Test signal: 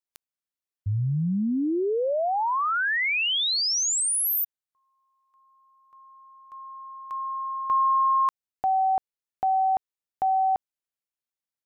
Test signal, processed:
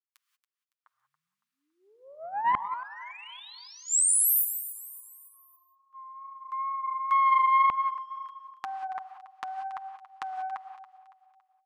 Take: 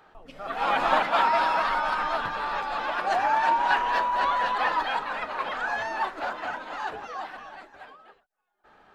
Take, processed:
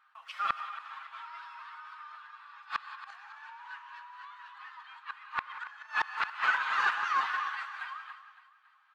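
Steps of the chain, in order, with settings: gate -52 dBFS, range -16 dB; elliptic high-pass 1.1 kHz, stop band 80 dB; treble shelf 3.4 kHz -8.5 dB; comb 7.4 ms, depth 46%; wow and flutter 26 cents; in parallel at -7.5 dB: saturation -23 dBFS; on the sum: inverted gate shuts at -23 dBFS, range -28 dB; on a send: feedback delay 280 ms, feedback 43%, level -14.5 dB; on the sum: gated-style reverb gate 210 ms rising, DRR 9.5 dB; loudspeaker Doppler distortion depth 0.24 ms; trim +6.5 dB

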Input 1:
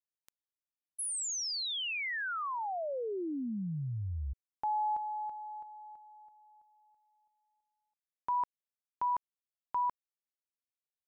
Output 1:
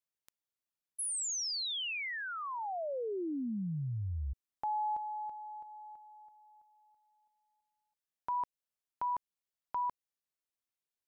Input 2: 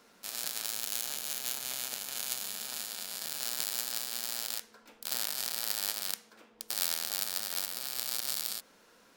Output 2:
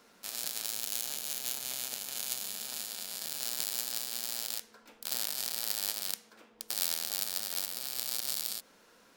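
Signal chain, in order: dynamic bell 1.4 kHz, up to -4 dB, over -49 dBFS, Q 0.92

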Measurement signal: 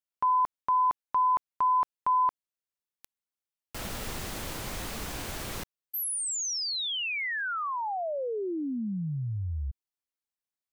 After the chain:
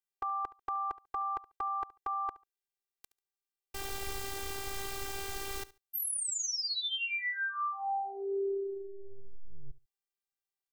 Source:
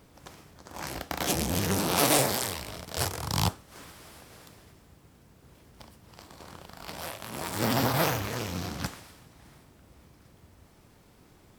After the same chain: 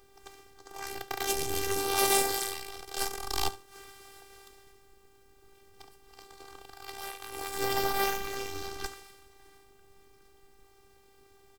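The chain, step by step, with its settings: feedback delay 71 ms, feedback 19%, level -18.5 dB; robot voice 394 Hz

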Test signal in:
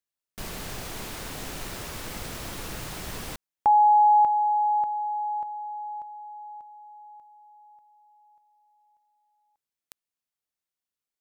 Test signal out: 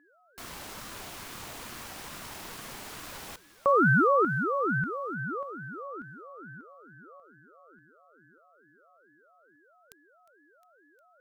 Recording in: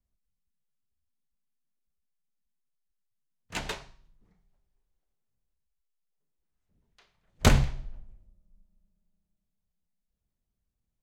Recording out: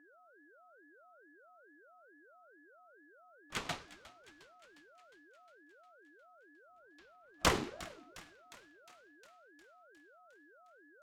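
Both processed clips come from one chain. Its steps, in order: resonant low shelf 280 Hz -11.5 dB, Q 1.5; whistle 1 kHz -56 dBFS; on a send: thinning echo 357 ms, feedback 64%, high-pass 560 Hz, level -17 dB; on the sum: ring modulator with a swept carrier 490 Hz, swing 45%, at 2.3 Hz; trim -2 dB

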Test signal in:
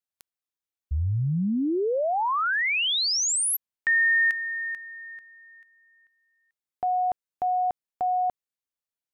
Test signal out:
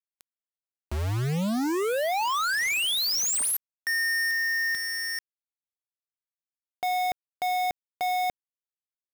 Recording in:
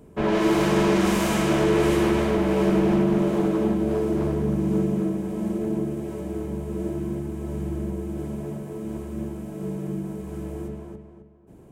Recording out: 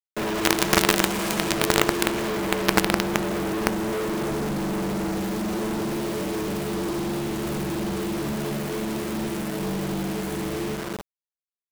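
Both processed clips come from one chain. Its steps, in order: high-pass 150 Hz 12 dB/octave; companded quantiser 2-bit; trim -1 dB

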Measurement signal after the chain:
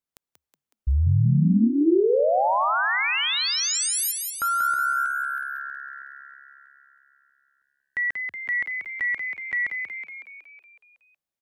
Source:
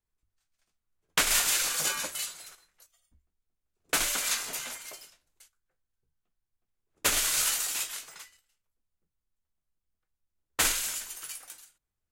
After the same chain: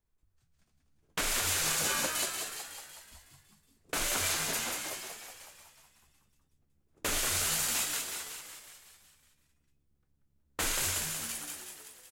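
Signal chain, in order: peak limiter -22 dBFS; tilt shelf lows +3.5 dB, about 910 Hz; frequency-shifting echo 185 ms, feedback 59%, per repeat +69 Hz, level -5.5 dB; trim +3 dB

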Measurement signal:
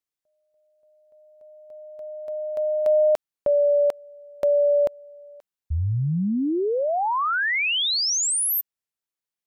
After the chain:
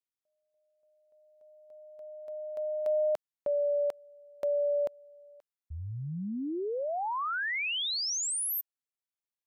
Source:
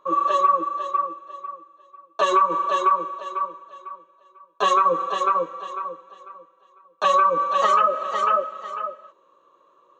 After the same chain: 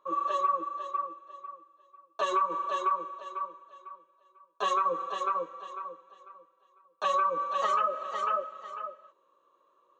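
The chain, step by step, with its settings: bass shelf 150 Hz -8 dB; trim -9 dB

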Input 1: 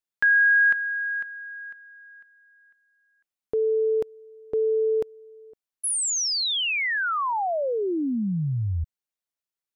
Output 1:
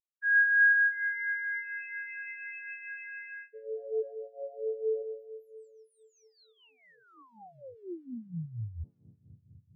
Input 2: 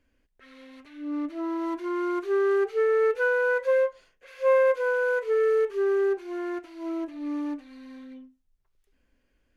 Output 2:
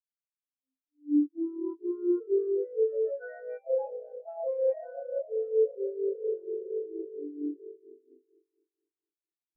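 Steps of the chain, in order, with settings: echo with a slow build-up 125 ms, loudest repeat 5, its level -14 dB; in parallel at -11 dB: word length cut 6-bit, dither triangular; on the sum: treble shelf 2.7 kHz +11.5 dB; harmonic tremolo 4.3 Hz, depth 50%, crossover 1.2 kHz; ever faster or slower copies 734 ms, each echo +4 st, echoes 2; modulation noise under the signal 12 dB; reverse; compression 16:1, threshold -26 dBFS; reverse; spectral contrast expander 4:1

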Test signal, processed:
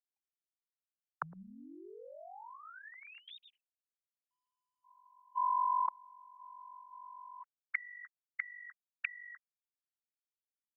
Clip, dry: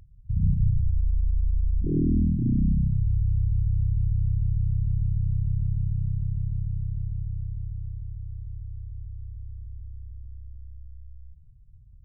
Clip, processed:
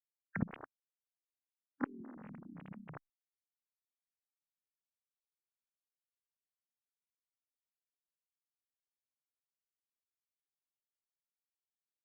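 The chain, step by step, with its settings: formants replaced by sine waves; expander -49 dBFS; spectral noise reduction 21 dB; reverse; compression 10:1, threshold -30 dBFS; reverse; inverted gate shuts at -37 dBFS, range -35 dB; trim +17 dB; Opus 64 kbps 48 kHz

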